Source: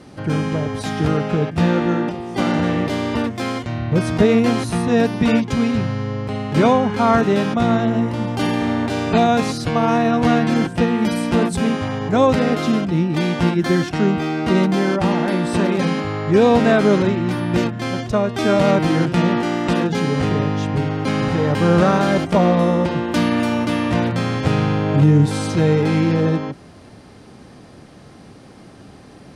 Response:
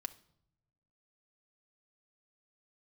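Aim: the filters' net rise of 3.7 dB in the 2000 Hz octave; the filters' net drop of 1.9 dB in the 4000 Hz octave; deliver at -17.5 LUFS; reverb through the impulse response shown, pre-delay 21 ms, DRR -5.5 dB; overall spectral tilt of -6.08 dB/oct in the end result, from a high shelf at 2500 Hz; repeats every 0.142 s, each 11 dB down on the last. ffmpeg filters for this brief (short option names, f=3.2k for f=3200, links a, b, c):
-filter_complex "[0:a]equalizer=f=2k:t=o:g=4.5,highshelf=f=2.5k:g=5,equalizer=f=4k:t=o:g=-9,aecho=1:1:142|284|426:0.282|0.0789|0.0221,asplit=2[a][b];[1:a]atrim=start_sample=2205,adelay=21[c];[b][c]afir=irnorm=-1:irlink=0,volume=8dB[d];[a][d]amix=inputs=2:normalize=0,volume=-7dB"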